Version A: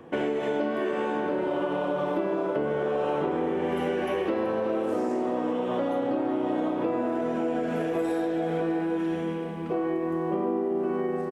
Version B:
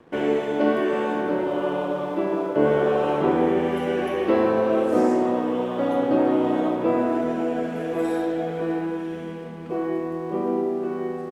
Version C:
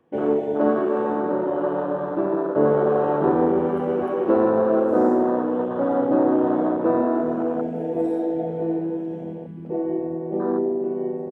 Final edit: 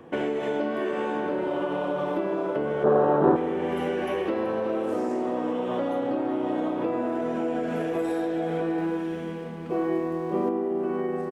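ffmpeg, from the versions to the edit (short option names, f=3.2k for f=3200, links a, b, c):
-filter_complex "[0:a]asplit=3[a][b][c];[a]atrim=end=2.842[d];[2:a]atrim=start=2.838:end=3.362[e];[b]atrim=start=3.358:end=8.782[f];[1:a]atrim=start=8.778:end=10.492[g];[c]atrim=start=10.488[h];[d][e]acrossfade=d=0.004:c1=hsin:c2=hsin[i];[i][f]acrossfade=d=0.004:c1=hsin:c2=hsin[j];[j][g]acrossfade=d=0.004:c1=hsin:c2=hsin[k];[k][h]acrossfade=d=0.004:c1=hsin:c2=hsin"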